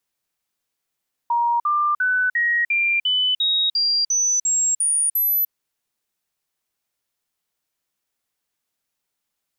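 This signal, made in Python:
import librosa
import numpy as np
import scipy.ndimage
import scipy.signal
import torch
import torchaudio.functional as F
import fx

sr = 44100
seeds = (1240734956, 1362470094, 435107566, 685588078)

y = fx.stepped_sweep(sr, from_hz=945.0, direction='up', per_octave=3, tones=12, dwell_s=0.3, gap_s=0.05, level_db=-16.5)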